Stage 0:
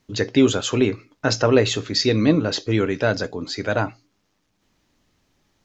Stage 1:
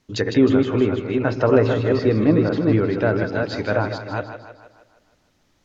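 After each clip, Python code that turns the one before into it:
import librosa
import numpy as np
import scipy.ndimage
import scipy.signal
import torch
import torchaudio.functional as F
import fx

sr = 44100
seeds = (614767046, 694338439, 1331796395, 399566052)

y = fx.reverse_delay(x, sr, ms=249, wet_db=-4.0)
y = fx.env_lowpass_down(y, sr, base_hz=1600.0, full_db=-16.5)
y = fx.echo_split(y, sr, split_hz=360.0, low_ms=112, high_ms=156, feedback_pct=52, wet_db=-9.5)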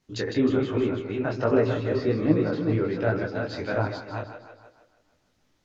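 y = fx.detune_double(x, sr, cents=45)
y = F.gain(torch.from_numpy(y), -2.5).numpy()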